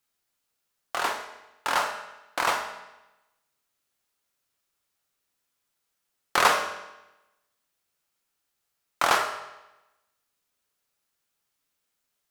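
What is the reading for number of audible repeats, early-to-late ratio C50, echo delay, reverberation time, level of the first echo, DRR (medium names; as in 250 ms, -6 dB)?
no echo, 7.5 dB, no echo, 1.0 s, no echo, 4.0 dB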